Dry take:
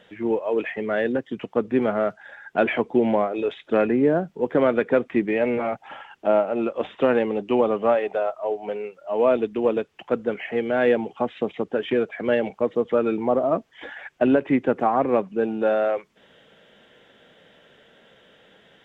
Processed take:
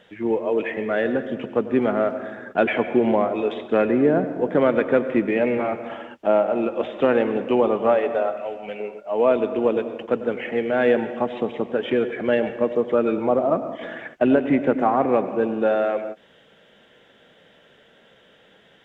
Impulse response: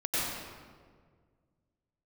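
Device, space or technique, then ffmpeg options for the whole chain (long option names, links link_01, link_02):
keyed gated reverb: -filter_complex "[0:a]asplit=3[link_01][link_02][link_03];[1:a]atrim=start_sample=2205[link_04];[link_02][link_04]afir=irnorm=-1:irlink=0[link_05];[link_03]apad=whole_len=831258[link_06];[link_05][link_06]sidechaingate=range=-33dB:threshold=-44dB:ratio=16:detection=peak,volume=-18dB[link_07];[link_01][link_07]amix=inputs=2:normalize=0,asettb=1/sr,asplit=3[link_08][link_09][link_10];[link_08]atrim=end=8.374[link_11];[link_09]atrim=start=8.37:end=8.8,asetpts=PTS-STARTPTS,afade=type=in:duration=0.004:curve=qsin,afade=type=out:start_time=0.426:duration=0.004:curve=qsin,equalizer=frequency=400:width_type=o:width=0.67:gain=-9,equalizer=frequency=1000:width_type=o:width=0.67:gain=-8,equalizer=frequency=2500:width_type=o:width=0.67:gain=8[link_12];[link_10]atrim=start=8.796[link_13];[link_11][link_12]acrossfade=duration=0.004:curve1=hsin:curve2=qsin[link_14];[link_14][link_13]acrossfade=duration=0.004:curve1=qsin:curve2=hsin"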